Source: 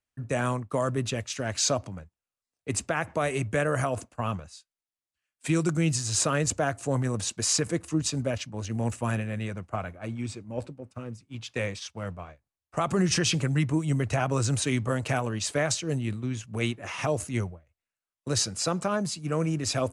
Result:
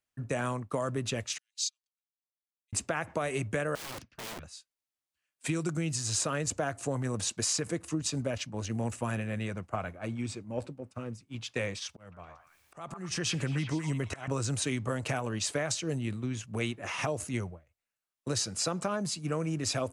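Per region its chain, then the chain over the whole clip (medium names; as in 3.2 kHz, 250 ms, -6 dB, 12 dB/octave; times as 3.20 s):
1.38–2.73 s: ladder high-pass 3 kHz, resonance 35% + comb 2.9 ms, depth 32% + upward expansion 2.5:1, over -48 dBFS
3.75–4.43 s: FFT filter 130 Hz 0 dB, 780 Hz -20 dB, 1.2 kHz -11 dB, 1.7 kHz 0 dB, 3 kHz -1 dB, 5.5 kHz -2 dB, 7.9 kHz -27 dB + integer overflow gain 35.5 dB
11.89–14.28 s: slow attack 553 ms + upward compressor, threshold -47 dBFS + repeats whose band climbs or falls 116 ms, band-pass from 1.1 kHz, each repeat 0.7 oct, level -3 dB
whole clip: compression, threshold -27 dBFS; bass shelf 85 Hz -6 dB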